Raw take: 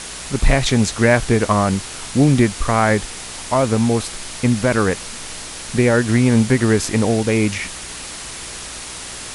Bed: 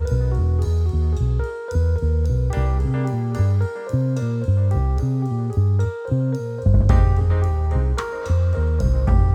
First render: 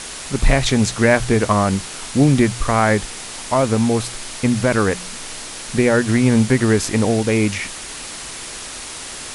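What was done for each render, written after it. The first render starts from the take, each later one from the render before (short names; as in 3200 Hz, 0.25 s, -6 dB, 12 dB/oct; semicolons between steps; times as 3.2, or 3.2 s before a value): de-hum 60 Hz, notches 3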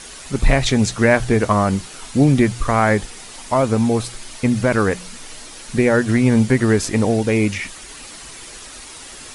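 denoiser 8 dB, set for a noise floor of -32 dBFS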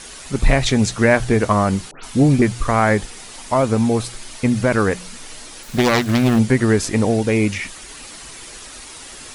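1.91–2.42 dispersion highs, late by 0.129 s, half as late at 2500 Hz; 5.63–6.39 self-modulated delay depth 0.59 ms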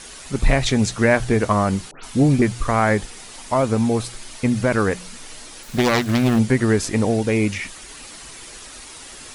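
gain -2 dB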